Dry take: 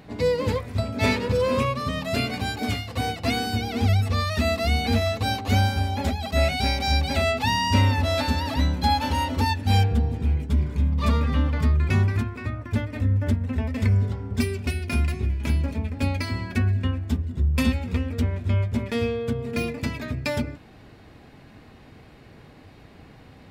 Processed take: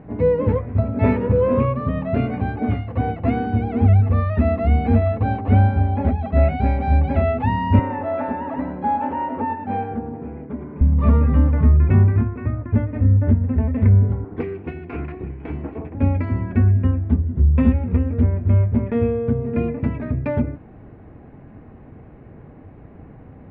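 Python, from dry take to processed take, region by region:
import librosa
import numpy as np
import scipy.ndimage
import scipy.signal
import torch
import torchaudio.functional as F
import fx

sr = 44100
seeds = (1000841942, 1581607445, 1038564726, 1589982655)

y = fx.chain(x, sr, fx.bandpass_edges(low_hz=310.0, high_hz=2100.0),
    fx.echo_single(ms=108, db=-8.0), at=(7.79, 10.81))
y = fx.chain(y, sr, fx.lower_of_two(delay_ms=2.7),
    fx.highpass(hz=350.0, slope=6),
    fx.notch(hz=570.0, q=7.1), at=(14.24, 15.95))
y = scipy.signal.sosfilt(scipy.signal.butter(4, 2400.0, 'lowpass', fs=sr, output='sos'), y)
y = fx.tilt_shelf(y, sr, db=8.5, hz=1400.0)
y = y * librosa.db_to_amplitude(-1.5)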